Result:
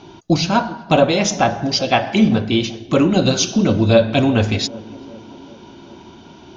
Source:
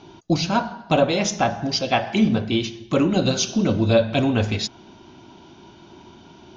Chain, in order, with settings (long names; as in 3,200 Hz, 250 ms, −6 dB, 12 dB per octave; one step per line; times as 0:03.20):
feedback echo with a band-pass in the loop 387 ms, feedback 66%, band-pass 330 Hz, level −17.5 dB
level +4.5 dB